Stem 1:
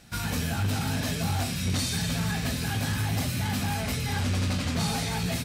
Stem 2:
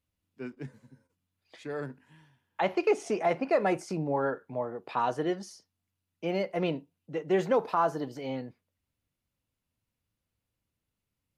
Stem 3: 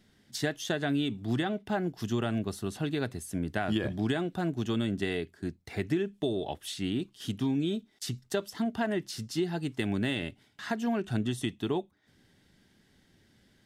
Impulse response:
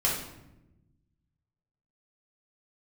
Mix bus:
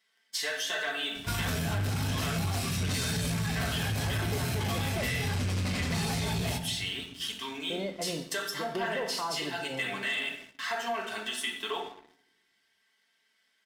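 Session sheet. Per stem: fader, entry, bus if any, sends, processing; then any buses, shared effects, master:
-6.5 dB, 1.15 s, no bus, send -18.5 dB, dry
-13.0 dB, 1.45 s, muted 5.06–7.7, bus A, send -18 dB, dry
-2.0 dB, 0.00 s, bus A, send -7.5 dB, HPF 1200 Hz 12 dB/oct; high shelf 2900 Hz -5.5 dB; comb 4.5 ms, depth 63%
bus A: 0.0 dB, limiter -33 dBFS, peak gain reduction 8.5 dB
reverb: on, RT60 0.95 s, pre-delay 3 ms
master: sample leveller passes 2; compressor, threshold -28 dBFS, peak gain reduction 5.5 dB

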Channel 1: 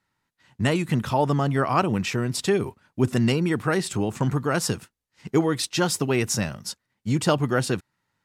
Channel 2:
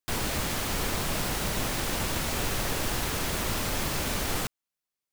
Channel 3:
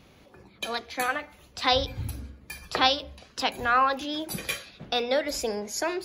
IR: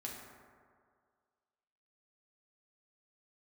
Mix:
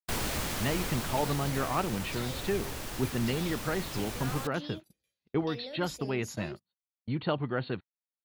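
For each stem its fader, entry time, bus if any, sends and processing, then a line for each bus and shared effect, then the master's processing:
-8.5 dB, 0.00 s, no send, Chebyshev low-pass 4400 Hz, order 10
-1.5 dB, 0.00 s, no send, auto duck -8 dB, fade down 1.95 s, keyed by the first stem
-5.5 dB, 0.55 s, no send, bell 1200 Hz -12.5 dB 1.8 oct; compressor 1.5:1, threshold -39 dBFS, peak gain reduction 6.5 dB; limiter -27.5 dBFS, peak gain reduction 10 dB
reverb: off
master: gate -39 dBFS, range -36 dB

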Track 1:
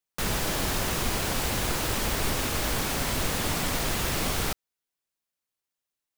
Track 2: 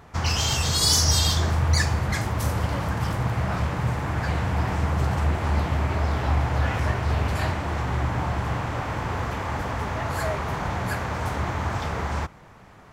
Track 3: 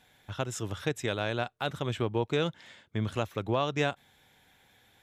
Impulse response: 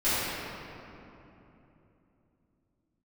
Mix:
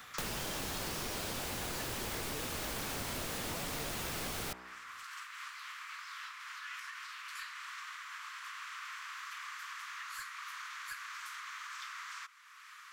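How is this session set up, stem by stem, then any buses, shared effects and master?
-3.5 dB, 0.00 s, bus A, no send, de-hum 62.27 Hz, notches 33
-15.0 dB, 0.00 s, no bus, no send, compressor, threshold -25 dBFS, peak gain reduction 9.5 dB; steep high-pass 1100 Hz 72 dB/oct; slew limiter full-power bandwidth 120 Hz
-12.5 dB, 0.00 s, bus A, no send, dry
bus A: 0.0 dB, low shelf 94 Hz -7.5 dB; compressor 4:1, threshold -37 dBFS, peak gain reduction 7.5 dB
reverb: off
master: three-band squash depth 70%

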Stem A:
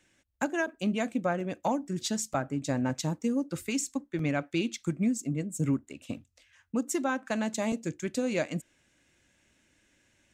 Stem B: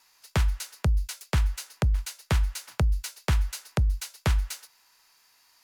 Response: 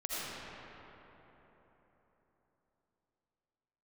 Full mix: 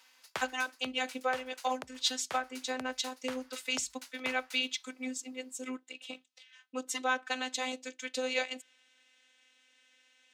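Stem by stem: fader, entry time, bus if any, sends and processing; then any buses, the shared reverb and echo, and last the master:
+1.5 dB, 0.00 s, no send, bell 3500 Hz +10.5 dB 1.2 oct; robotiser 256 Hz
-0.5 dB, 0.00 s, no send, auto duck -9 dB, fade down 0.75 s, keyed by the first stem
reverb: off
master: HPF 550 Hz 12 dB/oct; high shelf 6300 Hz -6.5 dB

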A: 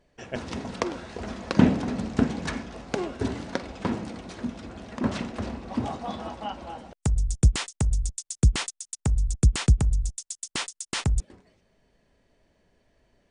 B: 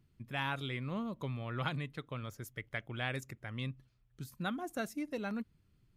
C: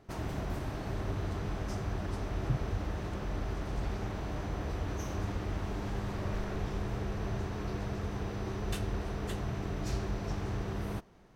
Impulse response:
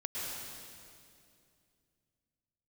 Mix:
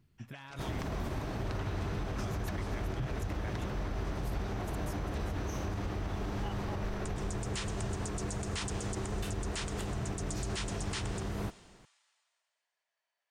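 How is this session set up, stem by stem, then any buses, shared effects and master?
-2.0 dB, 0.00 s, send -15.5 dB, no echo send, HPF 810 Hz 24 dB/oct; upward expander 1.5:1, over -54 dBFS; auto duck -13 dB, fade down 0.35 s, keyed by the second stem
-3.0 dB, 0.00 s, no send, echo send -9.5 dB, negative-ratio compressor -43 dBFS, ratio -1
+1.5 dB, 0.50 s, no send, no echo send, dry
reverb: on, RT60 2.4 s, pre-delay 0.1 s
echo: echo 0.396 s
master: limiter -27 dBFS, peak gain reduction 10.5 dB

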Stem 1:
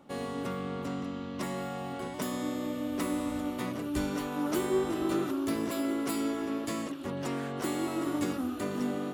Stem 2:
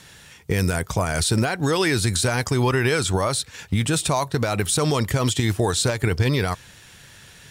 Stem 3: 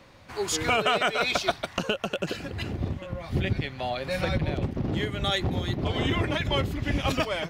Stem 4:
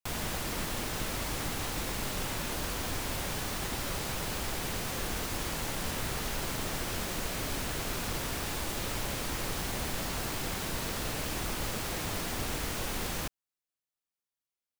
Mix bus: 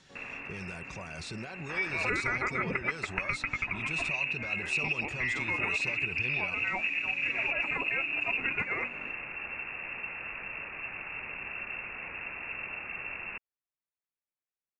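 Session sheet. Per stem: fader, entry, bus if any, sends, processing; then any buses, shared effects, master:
-17.0 dB, 0.00 s, bus A, no send, limiter -27 dBFS, peak gain reduction 9 dB
-13.0 dB, 0.00 s, bus A, no send, comb 5.3 ms, depth 36%
+2.0 dB, 1.40 s, bus B, no send, dry
-5.0 dB, 0.10 s, bus B, no send, auto duck -10 dB, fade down 1.50 s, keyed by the second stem
bus A: 0.0 dB, LPF 7000 Hz 24 dB/oct; limiter -33.5 dBFS, peak gain reduction 11 dB
bus B: 0.0 dB, inverted band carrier 2700 Hz; compressor 4:1, threshold -29 dBFS, peak gain reduction 10.5 dB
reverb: off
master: dry

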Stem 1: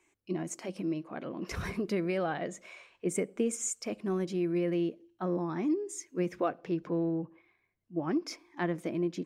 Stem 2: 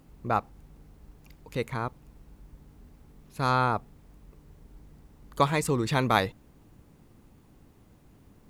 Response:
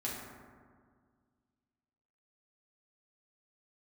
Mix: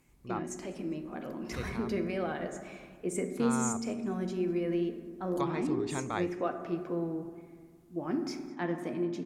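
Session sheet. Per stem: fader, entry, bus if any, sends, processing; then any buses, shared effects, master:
-6.0 dB, 0.00 s, send -3.5 dB, echo send -19.5 dB, vibrato 1.2 Hz 15 cents
-13.0 dB, 0.00 s, send -18.5 dB, no echo send, treble ducked by the level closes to 2300 Hz, closed at -21 dBFS; high shelf 4400 Hz +11 dB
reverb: on, RT60 1.8 s, pre-delay 4 ms
echo: feedback echo 0.204 s, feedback 31%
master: wow and flutter 25 cents

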